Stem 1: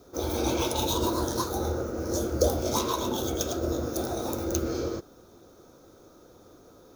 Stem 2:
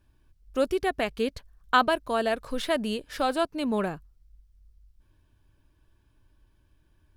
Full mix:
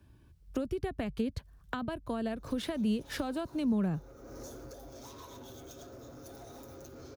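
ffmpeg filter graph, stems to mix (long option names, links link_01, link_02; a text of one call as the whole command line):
ffmpeg -i stem1.wav -i stem2.wav -filter_complex "[0:a]aecho=1:1:7.3:0.77,acompressor=threshold=-29dB:ratio=6,asoftclip=type=tanh:threshold=-30.5dB,adelay=2300,volume=-6.5dB,afade=type=out:start_time=4:duration=0.77:silence=0.446684[link_01];[1:a]acrossover=split=170[link_02][link_03];[link_03]acompressor=threshold=-37dB:ratio=6[link_04];[link_02][link_04]amix=inputs=2:normalize=0,highpass=86,lowshelf=frequency=350:gain=9.5,volume=2.5dB,asplit=2[link_05][link_06];[link_06]apad=whole_len=408448[link_07];[link_01][link_07]sidechaincompress=threshold=-43dB:ratio=12:attack=9.5:release=400[link_08];[link_08][link_05]amix=inputs=2:normalize=0,acrossover=split=220[link_09][link_10];[link_10]acompressor=threshold=-33dB:ratio=4[link_11];[link_09][link_11]amix=inputs=2:normalize=0" out.wav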